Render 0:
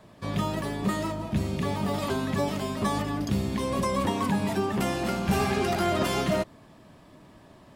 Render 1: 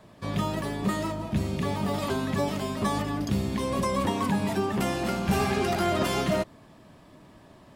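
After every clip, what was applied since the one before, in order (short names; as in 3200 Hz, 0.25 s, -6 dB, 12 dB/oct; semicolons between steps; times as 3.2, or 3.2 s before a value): nothing audible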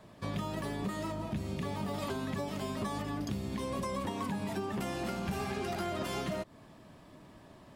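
compressor, threshold -30 dBFS, peak gain reduction 10 dB; gain -2.5 dB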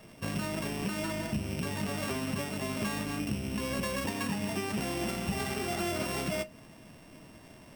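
sample sorter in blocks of 16 samples; on a send at -11 dB: reverb RT60 0.25 s, pre-delay 4 ms; on the sum: gain +2.5 dB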